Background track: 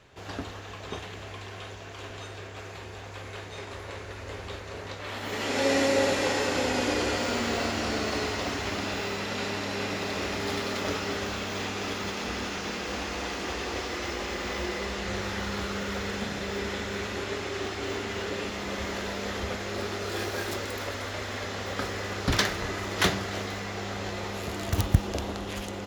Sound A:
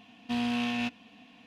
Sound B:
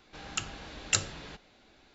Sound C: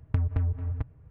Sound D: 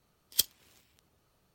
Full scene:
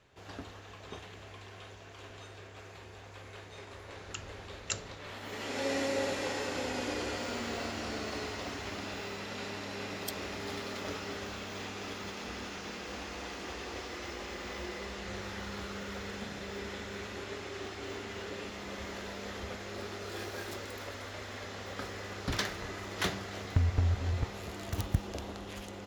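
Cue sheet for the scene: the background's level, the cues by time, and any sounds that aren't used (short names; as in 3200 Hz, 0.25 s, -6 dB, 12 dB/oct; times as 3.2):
background track -8.5 dB
3.77 add B -9 dB
9.69 add D -14.5 dB
23.42 add C -1.5 dB
not used: A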